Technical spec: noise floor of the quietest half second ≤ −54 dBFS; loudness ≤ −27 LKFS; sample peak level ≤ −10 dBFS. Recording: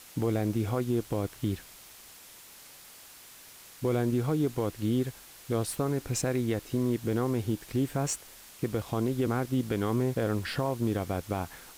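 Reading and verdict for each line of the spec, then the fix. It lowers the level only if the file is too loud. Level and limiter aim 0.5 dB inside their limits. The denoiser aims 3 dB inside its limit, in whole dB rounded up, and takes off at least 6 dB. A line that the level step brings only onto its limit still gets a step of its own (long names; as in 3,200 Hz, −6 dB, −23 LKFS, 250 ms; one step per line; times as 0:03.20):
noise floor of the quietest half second −51 dBFS: out of spec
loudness −30.5 LKFS: in spec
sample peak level −19.0 dBFS: in spec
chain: broadband denoise 6 dB, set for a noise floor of −51 dBFS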